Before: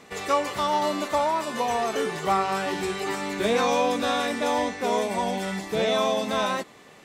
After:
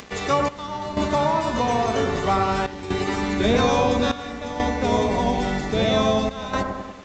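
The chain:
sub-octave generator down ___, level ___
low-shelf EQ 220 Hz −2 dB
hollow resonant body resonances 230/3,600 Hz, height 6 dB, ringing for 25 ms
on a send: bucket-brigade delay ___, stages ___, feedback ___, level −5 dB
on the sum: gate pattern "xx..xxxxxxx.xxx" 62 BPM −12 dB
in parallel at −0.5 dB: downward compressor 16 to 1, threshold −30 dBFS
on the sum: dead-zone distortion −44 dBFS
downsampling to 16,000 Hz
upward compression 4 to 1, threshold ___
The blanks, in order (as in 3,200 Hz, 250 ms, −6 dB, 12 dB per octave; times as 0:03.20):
2 octaves, +1 dB, 96 ms, 1,024, 56%, −37 dBFS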